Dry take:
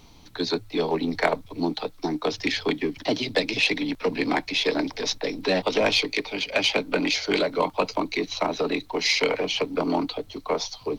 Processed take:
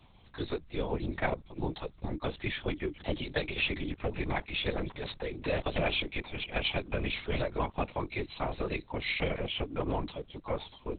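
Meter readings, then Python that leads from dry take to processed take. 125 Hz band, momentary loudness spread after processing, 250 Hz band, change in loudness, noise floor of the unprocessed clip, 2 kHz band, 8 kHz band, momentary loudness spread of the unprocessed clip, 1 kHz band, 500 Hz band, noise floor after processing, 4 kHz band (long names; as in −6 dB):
+2.0 dB, 7 LU, −10.0 dB, −9.5 dB, −50 dBFS, −9.0 dB, below −40 dB, 6 LU, −9.0 dB, −9.5 dB, −58 dBFS, −11.0 dB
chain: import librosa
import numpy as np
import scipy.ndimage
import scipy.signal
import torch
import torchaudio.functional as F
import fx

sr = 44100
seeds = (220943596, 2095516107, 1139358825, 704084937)

y = fx.lpc_vocoder(x, sr, seeds[0], excitation='whisper', order=8)
y = y * 10.0 ** (-8.0 / 20.0)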